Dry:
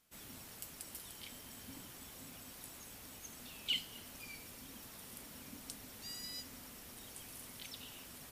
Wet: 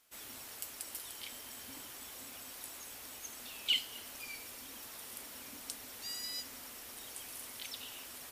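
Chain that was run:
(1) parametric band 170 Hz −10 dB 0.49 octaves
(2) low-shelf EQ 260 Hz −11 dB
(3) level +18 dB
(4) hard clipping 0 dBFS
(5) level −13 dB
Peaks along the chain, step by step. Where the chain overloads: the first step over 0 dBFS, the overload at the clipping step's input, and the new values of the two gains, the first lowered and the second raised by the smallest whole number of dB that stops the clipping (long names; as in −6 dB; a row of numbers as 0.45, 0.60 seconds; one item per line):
−23.0, −23.0, −5.0, −5.0, −18.0 dBFS
no step passes full scale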